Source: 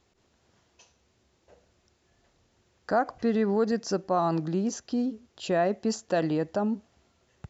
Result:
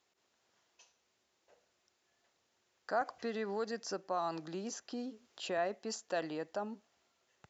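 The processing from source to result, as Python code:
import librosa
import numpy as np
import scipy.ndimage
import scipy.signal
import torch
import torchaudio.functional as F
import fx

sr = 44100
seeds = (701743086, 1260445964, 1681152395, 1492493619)

y = fx.highpass(x, sr, hz=280.0, slope=6)
y = fx.low_shelf(y, sr, hz=430.0, db=-9.5)
y = fx.band_squash(y, sr, depth_pct=40, at=(3.01, 5.58))
y = F.gain(torch.from_numpy(y), -5.5).numpy()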